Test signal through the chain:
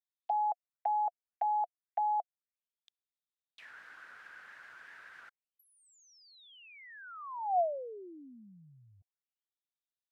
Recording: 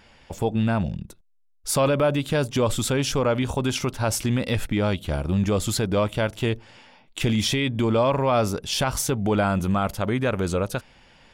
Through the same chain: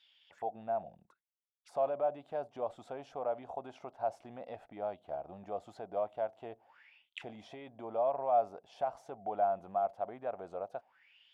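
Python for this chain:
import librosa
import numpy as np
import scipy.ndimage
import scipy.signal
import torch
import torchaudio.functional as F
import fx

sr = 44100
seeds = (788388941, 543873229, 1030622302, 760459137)

y = fx.auto_wah(x, sr, base_hz=710.0, top_hz=3700.0, q=8.9, full_db=-26.5, direction='down')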